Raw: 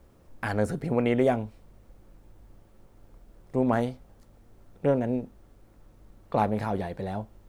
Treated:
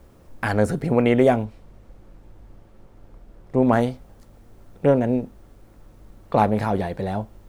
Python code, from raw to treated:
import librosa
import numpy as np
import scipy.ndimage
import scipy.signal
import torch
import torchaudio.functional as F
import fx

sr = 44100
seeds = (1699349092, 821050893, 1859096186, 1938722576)

y = fx.high_shelf(x, sr, hz=fx.line((1.44, 8700.0), (3.61, 4700.0)), db=-9.0, at=(1.44, 3.61), fade=0.02)
y = F.gain(torch.from_numpy(y), 6.5).numpy()